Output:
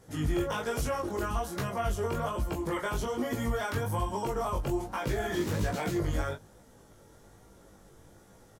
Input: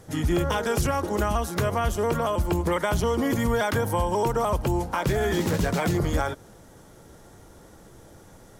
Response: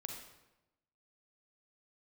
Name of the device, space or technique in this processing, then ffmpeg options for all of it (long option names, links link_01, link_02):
double-tracked vocal: -filter_complex "[0:a]asplit=2[link_01][link_02];[link_02]adelay=20,volume=-4.5dB[link_03];[link_01][link_03]amix=inputs=2:normalize=0,flanger=delay=15.5:depth=6.8:speed=1.2,volume=-5dB"